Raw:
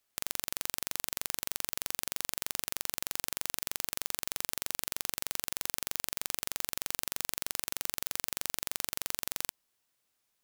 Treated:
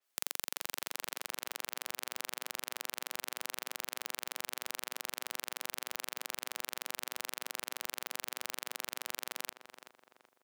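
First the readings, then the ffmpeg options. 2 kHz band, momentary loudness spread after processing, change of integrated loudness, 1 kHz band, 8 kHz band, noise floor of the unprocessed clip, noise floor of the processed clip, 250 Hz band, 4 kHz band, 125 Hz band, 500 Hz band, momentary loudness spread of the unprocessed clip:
-1.0 dB, 1 LU, -5.0 dB, -0.5 dB, -6.0 dB, -79 dBFS, -80 dBFS, -5.5 dB, -3.0 dB, -15.5 dB, -1.0 dB, 0 LU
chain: -filter_complex "[0:a]highpass=330,asplit=2[a][b];[b]adelay=380,lowpass=f=1.8k:p=1,volume=-8dB,asplit=2[c][d];[d]adelay=380,lowpass=f=1.8k:p=1,volume=0.45,asplit=2[e][f];[f]adelay=380,lowpass=f=1.8k:p=1,volume=0.45,asplit=2[g][h];[h]adelay=380,lowpass=f=1.8k:p=1,volume=0.45,asplit=2[i][j];[j]adelay=380,lowpass=f=1.8k:p=1,volume=0.45[k];[c][e][g][i][k]amix=inputs=5:normalize=0[l];[a][l]amix=inputs=2:normalize=0,adynamicequalizer=threshold=0.00141:dfrequency=4700:dqfactor=0.7:tfrequency=4700:tqfactor=0.7:attack=5:release=100:ratio=0.375:range=3:mode=cutabove:tftype=highshelf,volume=-1dB"

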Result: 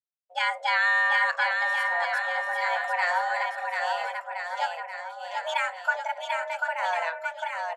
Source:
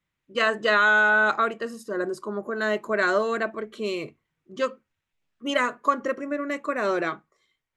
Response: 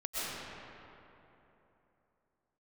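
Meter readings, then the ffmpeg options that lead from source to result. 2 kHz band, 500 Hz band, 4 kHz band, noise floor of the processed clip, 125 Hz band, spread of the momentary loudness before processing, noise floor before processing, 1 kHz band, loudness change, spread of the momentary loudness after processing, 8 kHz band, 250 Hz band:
-1.0 dB, -8.5 dB, -0.5 dB, -46 dBFS, under -40 dB, 14 LU, -83 dBFS, +1.0 dB, -2.0 dB, 11 LU, -2.0 dB, under -40 dB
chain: -filter_complex "[0:a]agate=range=-33dB:threshold=-49dB:ratio=3:detection=peak,afreqshift=340,asplit=2[a][b];[b]aecho=0:1:740|1369|1904|2358|2744:0.631|0.398|0.251|0.158|0.1[c];[a][c]amix=inputs=2:normalize=0,volume=-4dB"

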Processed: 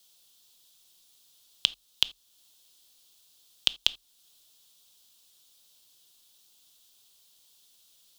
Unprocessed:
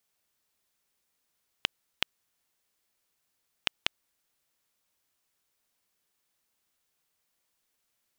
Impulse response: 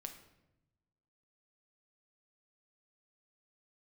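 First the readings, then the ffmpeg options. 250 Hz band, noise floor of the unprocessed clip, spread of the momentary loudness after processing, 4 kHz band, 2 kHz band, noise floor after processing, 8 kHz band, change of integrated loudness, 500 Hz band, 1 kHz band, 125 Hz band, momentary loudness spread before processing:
-3.5 dB, -79 dBFS, 3 LU, +8.5 dB, -1.5 dB, -66 dBFS, +7.5 dB, +6.5 dB, -4.0 dB, -5.0 dB, n/a, 3 LU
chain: -filter_complex "[0:a]highshelf=f=2.7k:t=q:w=3:g=8.5,afreqshift=-40,alimiter=limit=-8.5dB:level=0:latency=1:release=422,asplit=2[a][b];[1:a]atrim=start_sample=2205,atrim=end_sample=3969[c];[b][c]afir=irnorm=-1:irlink=0,volume=-2dB[d];[a][d]amix=inputs=2:normalize=0,volume=4dB"

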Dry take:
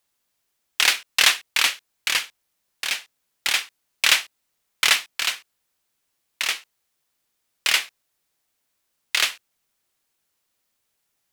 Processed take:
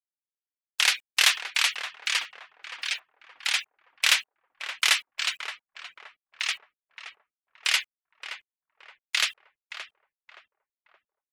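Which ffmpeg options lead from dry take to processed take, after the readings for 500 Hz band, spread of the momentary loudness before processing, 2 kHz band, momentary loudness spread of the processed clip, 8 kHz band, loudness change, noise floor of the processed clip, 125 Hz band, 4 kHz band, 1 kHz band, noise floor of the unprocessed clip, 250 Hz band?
-8.0 dB, 13 LU, -3.5 dB, 21 LU, -4.5 dB, -4.0 dB, under -85 dBFS, n/a, -3.5 dB, -4.5 dB, -75 dBFS, under -15 dB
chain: -filter_complex "[0:a]afftfilt=real='re*gte(hypot(re,im),0.0398)':imag='im*gte(hypot(re,im),0.0398)':win_size=1024:overlap=0.75,highpass=f=650:p=1,acrusher=bits=8:mix=0:aa=0.000001,asplit=2[a][b];[b]adelay=572,lowpass=f=1.1k:p=1,volume=-6dB,asplit=2[c][d];[d]adelay=572,lowpass=f=1.1k:p=1,volume=0.51,asplit=2[e][f];[f]adelay=572,lowpass=f=1.1k:p=1,volume=0.51,asplit=2[g][h];[h]adelay=572,lowpass=f=1.1k:p=1,volume=0.51,asplit=2[i][j];[j]adelay=572,lowpass=f=1.1k:p=1,volume=0.51,asplit=2[k][l];[l]adelay=572,lowpass=f=1.1k:p=1,volume=0.51[m];[a][c][e][g][i][k][m]amix=inputs=7:normalize=0,volume=-3.5dB"

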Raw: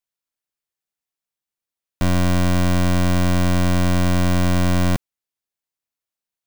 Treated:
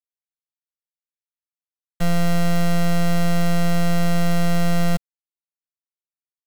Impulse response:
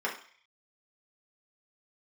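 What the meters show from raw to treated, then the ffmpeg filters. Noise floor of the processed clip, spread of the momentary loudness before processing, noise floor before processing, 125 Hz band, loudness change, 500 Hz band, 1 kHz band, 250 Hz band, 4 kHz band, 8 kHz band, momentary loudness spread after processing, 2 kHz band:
under -85 dBFS, 3 LU, under -85 dBFS, -3.5 dB, -2.5 dB, -0.5 dB, -1.5 dB, -1.5 dB, -2.0 dB, -2.0 dB, 3 LU, -2.0 dB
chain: -af "aecho=1:1:1.5:0.74,afftfilt=real='hypot(re,im)*cos(PI*b)':imag='0':win_size=1024:overlap=0.75,acrusher=bits=6:dc=4:mix=0:aa=0.000001"

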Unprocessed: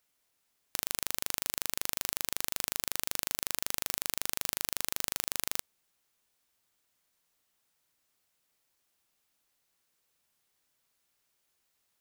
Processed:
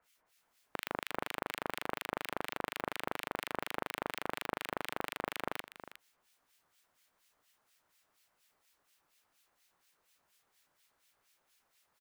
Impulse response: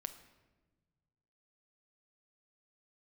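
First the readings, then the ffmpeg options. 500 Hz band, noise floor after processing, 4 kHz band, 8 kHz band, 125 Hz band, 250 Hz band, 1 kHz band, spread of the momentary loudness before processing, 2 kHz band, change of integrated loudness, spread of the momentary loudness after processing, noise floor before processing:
+6.5 dB, -80 dBFS, -7.5 dB, -18.5 dB, -0.5 dB, +5.0 dB, +5.5 dB, 1 LU, +1.5 dB, -7.0 dB, 4 LU, -77 dBFS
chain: -filter_complex "[0:a]equalizer=f=1.2k:w=0.42:g=7.5,acrossover=split=240|3700[a][b][c];[a]alimiter=level_in=25.5dB:limit=-24dB:level=0:latency=1,volume=-25.5dB[d];[c]acompressor=threshold=-46dB:ratio=16[e];[d][b][e]amix=inputs=3:normalize=0,aeval=exprs='clip(val(0),-1,0.0447)':c=same,acrossover=split=1700[f][g];[f]aeval=exprs='val(0)*(1-1/2+1/2*cos(2*PI*4.2*n/s))':c=same[h];[g]aeval=exprs='val(0)*(1-1/2-1/2*cos(2*PI*4.2*n/s))':c=same[i];[h][i]amix=inputs=2:normalize=0,asplit=2[j][k];[k]aecho=0:1:361:0.224[l];[j][l]amix=inputs=2:normalize=0,volume=5dB"

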